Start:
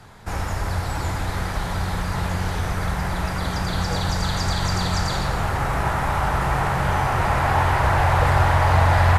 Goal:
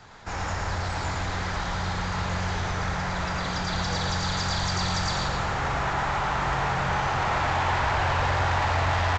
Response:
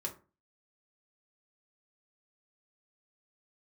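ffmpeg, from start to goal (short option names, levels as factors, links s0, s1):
-af "lowshelf=f=470:g=-7,aresample=16000,asoftclip=type=tanh:threshold=0.075,aresample=44100,aecho=1:1:111:0.631"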